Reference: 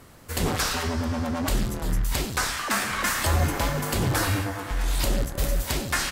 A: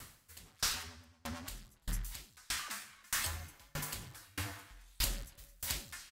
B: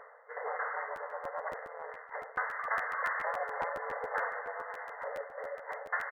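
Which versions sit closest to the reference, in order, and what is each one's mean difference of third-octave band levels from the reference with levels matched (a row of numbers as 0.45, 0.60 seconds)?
A, B; 10.5, 21.0 decibels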